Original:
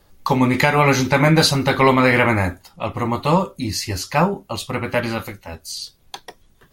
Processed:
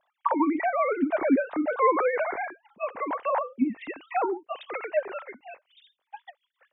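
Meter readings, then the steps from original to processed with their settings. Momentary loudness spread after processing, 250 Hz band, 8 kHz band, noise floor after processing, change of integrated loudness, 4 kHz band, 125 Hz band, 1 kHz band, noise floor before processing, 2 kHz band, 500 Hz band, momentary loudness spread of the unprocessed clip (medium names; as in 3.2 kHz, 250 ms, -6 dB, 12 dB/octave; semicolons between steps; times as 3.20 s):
17 LU, -8.0 dB, under -40 dB, -81 dBFS, -9.0 dB, under -25 dB, under -35 dB, -7.0 dB, -56 dBFS, -13.0 dB, -7.0 dB, 16 LU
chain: formants replaced by sine waves; low-pass that closes with the level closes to 1.3 kHz, closed at -15 dBFS; trim -8 dB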